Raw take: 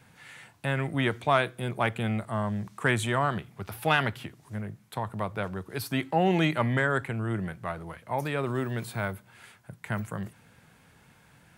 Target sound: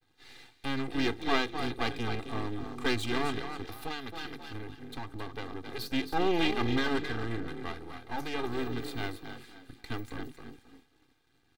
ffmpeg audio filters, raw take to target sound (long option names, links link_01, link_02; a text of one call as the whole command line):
ffmpeg -i in.wav -filter_complex "[0:a]asplit=5[link_01][link_02][link_03][link_04][link_05];[link_02]adelay=265,afreqshift=38,volume=-8.5dB[link_06];[link_03]adelay=530,afreqshift=76,volume=-18.7dB[link_07];[link_04]adelay=795,afreqshift=114,volume=-28.8dB[link_08];[link_05]adelay=1060,afreqshift=152,volume=-39dB[link_09];[link_01][link_06][link_07][link_08][link_09]amix=inputs=5:normalize=0,aeval=exprs='max(val(0),0)':channel_layout=same,aecho=1:1:2.5:0.81,agate=range=-33dB:threshold=-49dB:ratio=3:detection=peak,equalizer=frequency=250:width_type=o:width=0.67:gain=11,equalizer=frequency=4000:width_type=o:width=0.67:gain=9,equalizer=frequency=10000:width_type=o:width=0.67:gain=-4,asettb=1/sr,asplit=3[link_10][link_11][link_12];[link_10]atrim=end=3.714[link_13];[link_11]atrim=start=3.71:end=5.79,asetpts=PTS-STARTPTS,afade=type=in:duration=0.004:curve=qsin,afade=type=out:start_time=2.076:duration=0.004:curve=qsin,acompressor=threshold=-28dB:ratio=8[link_14];[link_12]atrim=start=5.786[link_15];[link_13][link_14]acrossfade=duration=0.004:curve1=hsin:curve2=qsin[link_16];[link_16][link_15]acrossfade=duration=0.004:curve1=qsin:curve2=hsin,volume=-4.5dB" out.wav